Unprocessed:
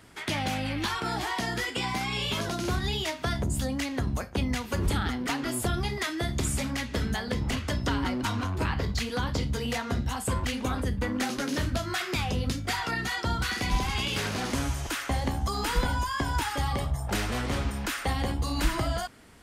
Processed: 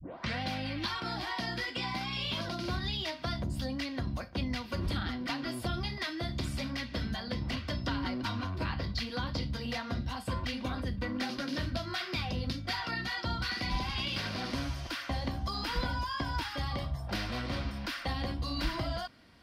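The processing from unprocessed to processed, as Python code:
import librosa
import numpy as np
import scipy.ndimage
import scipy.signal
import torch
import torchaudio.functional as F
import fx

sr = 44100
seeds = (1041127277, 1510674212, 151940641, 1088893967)

y = fx.tape_start_head(x, sr, length_s=0.42)
y = fx.high_shelf_res(y, sr, hz=5900.0, db=-7.0, q=3.0)
y = fx.notch_comb(y, sr, f0_hz=430.0)
y = F.gain(torch.from_numpy(y), -5.0).numpy()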